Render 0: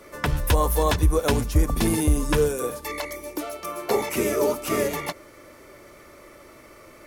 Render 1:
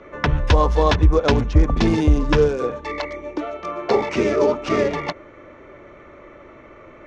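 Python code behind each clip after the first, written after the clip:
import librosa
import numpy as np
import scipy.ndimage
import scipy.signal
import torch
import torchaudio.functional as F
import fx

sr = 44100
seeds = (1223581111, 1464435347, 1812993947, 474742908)

y = fx.wiener(x, sr, points=9)
y = scipy.signal.sosfilt(scipy.signal.butter(6, 6000.0, 'lowpass', fs=sr, output='sos'), y)
y = y * librosa.db_to_amplitude(5.0)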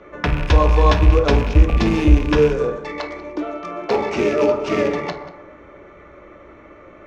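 y = fx.rattle_buzz(x, sr, strikes_db=-25.0, level_db=-18.0)
y = y + 10.0 ** (-18.5 / 20.0) * np.pad(y, (int(188 * sr / 1000.0), 0))[:len(y)]
y = fx.rev_fdn(y, sr, rt60_s=1.1, lf_ratio=0.95, hf_ratio=0.45, size_ms=98.0, drr_db=4.0)
y = y * librosa.db_to_amplitude(-1.5)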